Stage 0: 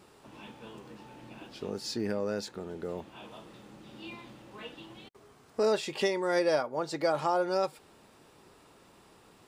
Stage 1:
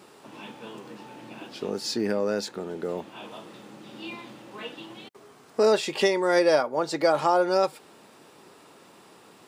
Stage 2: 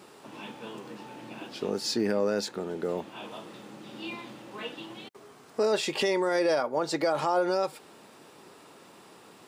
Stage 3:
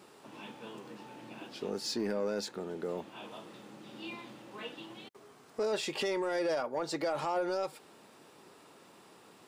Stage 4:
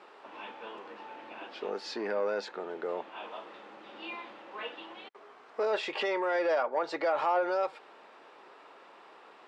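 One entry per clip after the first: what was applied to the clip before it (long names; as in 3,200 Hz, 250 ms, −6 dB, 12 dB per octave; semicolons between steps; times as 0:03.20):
high-pass filter 170 Hz 12 dB per octave; level +6.5 dB
brickwall limiter −17 dBFS, peak gain reduction 7.5 dB
soft clipping −19 dBFS, distortion −19 dB; level −5 dB
band-pass filter 550–2,500 Hz; level +7 dB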